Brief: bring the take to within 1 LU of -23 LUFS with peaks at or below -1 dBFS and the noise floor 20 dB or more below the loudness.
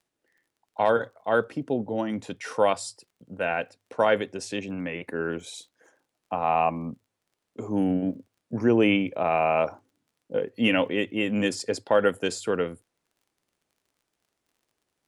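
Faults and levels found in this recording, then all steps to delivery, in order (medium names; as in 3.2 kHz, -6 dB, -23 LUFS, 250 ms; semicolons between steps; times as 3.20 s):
tick rate 26 per s; loudness -26.5 LUFS; peak level -9.5 dBFS; loudness target -23.0 LUFS
-> de-click; trim +3.5 dB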